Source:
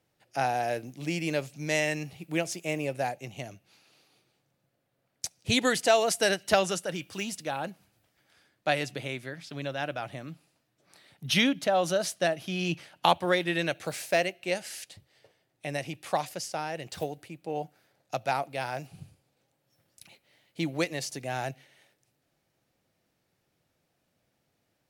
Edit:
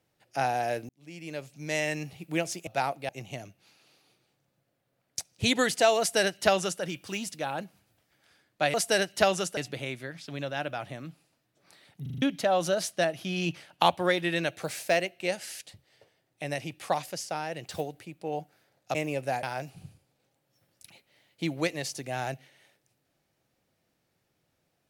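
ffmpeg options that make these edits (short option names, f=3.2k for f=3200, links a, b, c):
-filter_complex "[0:a]asplit=13[a][b][c][d][e][f][g][h][i][j][k][l][m];[a]atrim=end=0.89,asetpts=PTS-STARTPTS,afade=t=out:st=0.886:d=0.004:c=hsin[n];[b]atrim=start=0.89:end=2.672,asetpts=PTS-STARTPTS,afade=t=in:d=1.16[o];[c]atrim=start=18.178:end=18.602[p];[d]atrim=start=3.148:end=8.802[q];[e]atrim=start=6.048:end=6.882[r];[f]atrim=start=8.798:end=11.292[s];[g]atrim=start=11.248:end=11.292[t];[h]atrim=start=11.248:end=11.292[u];[i]atrim=start=11.248:end=11.292[v];[j]atrim=start=11.248:end=11.292[w];[k]atrim=start=11.448:end=18.182[x];[l]atrim=start=2.668:end=3.152[y];[m]atrim=start=18.598[z];[n][o]concat=n=2:v=0:a=1[aa];[aa][p]acrossfade=d=0.004:c1=hsin:c2=hsin[ab];[ab][q]acrossfade=d=0.004:c1=hsin:c2=hsin[ac];[ac][r]acrossfade=d=0.004:c1=hsin:c2=hsin[ad];[ad][s]acrossfade=d=0.004:c1=hsin:c2=hsin[ae];[ae][t]acrossfade=d=0.004:c1=hsin:c2=hsin[af];[af][u]acrossfade=d=0.004:c1=hsin:c2=hsin[ag];[ag][v]acrossfade=d=0.004:c1=hsin:c2=hsin[ah];[ah][w]acrossfade=d=0.004:c1=hsin:c2=hsin[ai];[ai][x]acrossfade=d=0.004:c1=hsin:c2=hsin[aj];[aj][y]acrossfade=d=0.004:c1=hsin:c2=hsin[ak];[ak][z]acrossfade=d=0.004:c1=hsin:c2=hsin"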